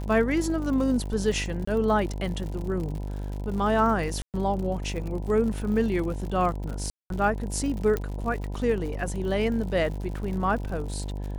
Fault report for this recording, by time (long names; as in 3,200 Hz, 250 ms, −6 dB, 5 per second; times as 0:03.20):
mains buzz 50 Hz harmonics 20 −32 dBFS
surface crackle 91 per second −34 dBFS
0:01.65–0:01.67: drop-out 24 ms
0:04.22–0:04.34: drop-out 118 ms
0:06.90–0:07.10: drop-out 202 ms
0:07.97: click −15 dBFS